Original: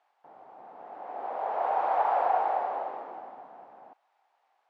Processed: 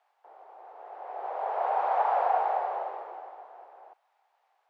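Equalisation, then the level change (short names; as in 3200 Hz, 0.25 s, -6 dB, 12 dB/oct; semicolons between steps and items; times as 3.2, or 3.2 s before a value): steep high-pass 370 Hz 48 dB/oct; 0.0 dB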